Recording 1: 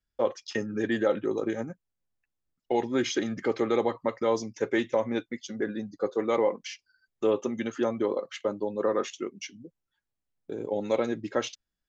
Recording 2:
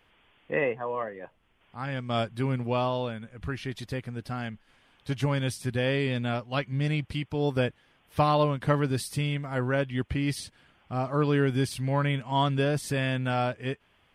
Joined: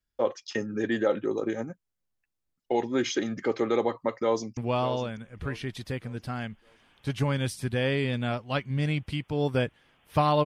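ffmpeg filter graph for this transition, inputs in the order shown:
-filter_complex "[0:a]apad=whole_dur=10.45,atrim=end=10.45,atrim=end=4.572[s0];[1:a]atrim=start=2.588:end=8.47[s1];[s0][s1]acrossfade=d=0.004:c1=hsin:c2=hsin,asplit=2[s2][s3];[s3]afade=t=in:st=4.16:d=0.01,afade=t=out:st=4.57:d=0.01,aecho=0:1:600|1200|1800|2400:0.266073|0.0931254|0.0325939|0.0114079[s4];[s2][s4]amix=inputs=2:normalize=0"

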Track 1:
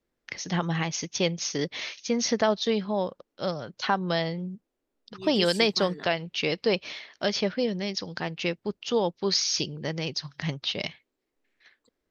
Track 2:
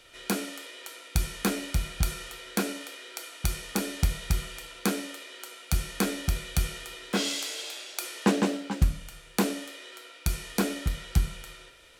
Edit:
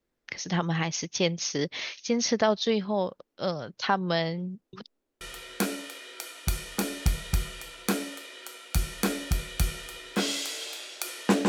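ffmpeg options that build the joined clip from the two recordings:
-filter_complex "[0:a]apad=whole_dur=11.48,atrim=end=11.48,asplit=2[s0][s1];[s0]atrim=end=4.732[s2];[s1]atrim=start=4.728:end=5.212,asetpts=PTS-STARTPTS,areverse[s3];[1:a]atrim=start=2.178:end=8.45[s4];[s2][s3]acrossfade=d=0.004:c1=hsin:c2=hsin[s5];[s5][s4]acrossfade=d=0.004:c1=hsin:c2=hsin"

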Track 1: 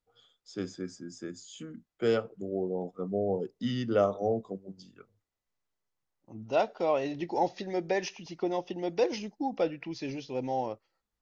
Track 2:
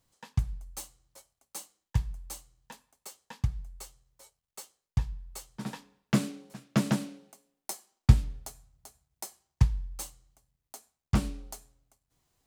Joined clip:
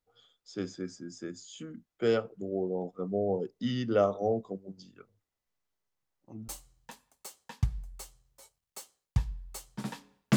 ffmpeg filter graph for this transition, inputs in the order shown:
-filter_complex "[0:a]apad=whole_dur=10.36,atrim=end=10.36,atrim=end=6.482[s0];[1:a]atrim=start=2.288:end=6.17[s1];[s0][s1]acrossfade=d=0.004:c1=hsin:c2=hsin"

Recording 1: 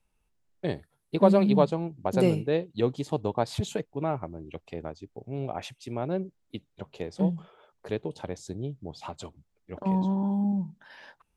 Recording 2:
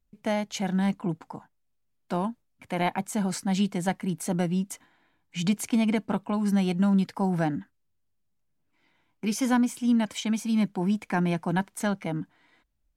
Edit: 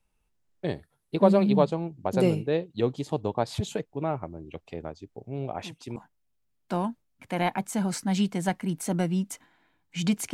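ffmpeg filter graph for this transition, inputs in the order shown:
-filter_complex "[1:a]asplit=2[s0][s1];[0:a]apad=whole_dur=10.33,atrim=end=10.33,atrim=end=5.962[s2];[s1]atrim=start=1.358:end=5.73[s3];[s0]atrim=start=0.94:end=1.36,asetpts=PTS-STARTPTS,volume=0.178,afade=t=in:d=0.004:c=hsin,afade=t=out:st=0.416:d=0.004:c=hsin,adelay=5540[s4];[s2][s3]acrossfade=d=0.004:c1=hsin:c2=hsin[s5];[s5][s4]amix=inputs=2:normalize=0"

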